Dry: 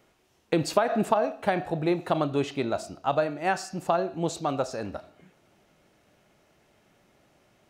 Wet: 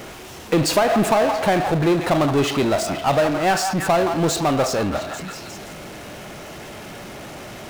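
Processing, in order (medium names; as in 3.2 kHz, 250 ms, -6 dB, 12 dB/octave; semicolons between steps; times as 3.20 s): repeats whose band climbs or falls 168 ms, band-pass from 1 kHz, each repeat 0.7 oct, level -10 dB; power-law waveshaper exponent 0.5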